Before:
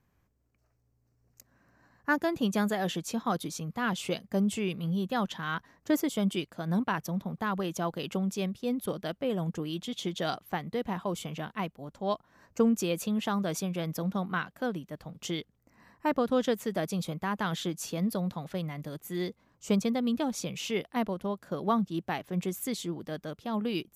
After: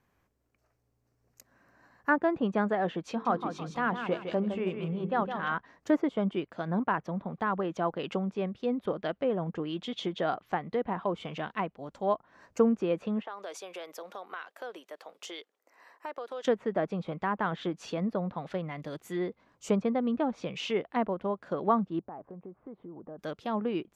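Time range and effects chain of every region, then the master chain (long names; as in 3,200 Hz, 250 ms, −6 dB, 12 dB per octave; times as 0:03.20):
0:03.09–0:05.54: mains-hum notches 50/100/150/200/250/300/350/400/450 Hz + repeating echo 160 ms, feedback 34%, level −8 dB
0:13.22–0:16.45: high-pass filter 400 Hz 24 dB per octave + downward compressor 3 to 1, threshold −42 dBFS
0:21.99–0:23.19: one scale factor per block 7 bits + low-pass filter 1,100 Hz 24 dB per octave + downward compressor, threshold −42 dBFS
whole clip: treble cut that deepens with the level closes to 1,600 Hz, closed at −28.5 dBFS; bass and treble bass −8 dB, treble −4 dB; level +3.5 dB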